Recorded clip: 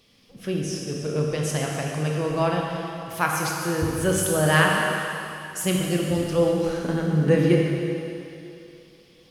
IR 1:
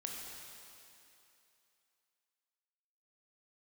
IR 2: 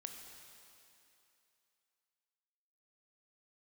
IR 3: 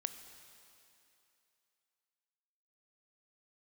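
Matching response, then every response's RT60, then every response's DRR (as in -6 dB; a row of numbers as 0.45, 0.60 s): 1; 2.8, 2.8, 2.8 s; -1.0, 3.5, 9.0 dB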